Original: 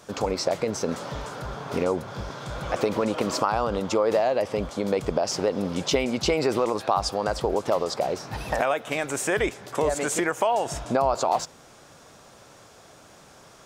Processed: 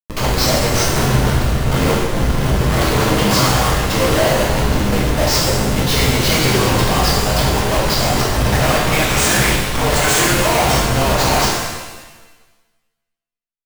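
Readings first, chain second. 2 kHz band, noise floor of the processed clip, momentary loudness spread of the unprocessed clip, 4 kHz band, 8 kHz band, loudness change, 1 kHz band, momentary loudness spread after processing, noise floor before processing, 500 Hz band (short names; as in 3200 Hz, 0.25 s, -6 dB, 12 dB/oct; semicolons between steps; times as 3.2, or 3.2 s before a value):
+14.0 dB, -77 dBFS, 8 LU, +16.0 dB, +14.5 dB, +11.0 dB, +8.5 dB, 4 LU, -51 dBFS, +5.5 dB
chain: ten-band EQ 250 Hz -11 dB, 500 Hz -11 dB, 4000 Hz +8 dB; echo 0.238 s -22.5 dB; Schmitt trigger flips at -31.5 dBFS; maximiser +29 dB; shimmer reverb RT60 1.2 s, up +7 st, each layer -8 dB, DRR -5 dB; gain -18 dB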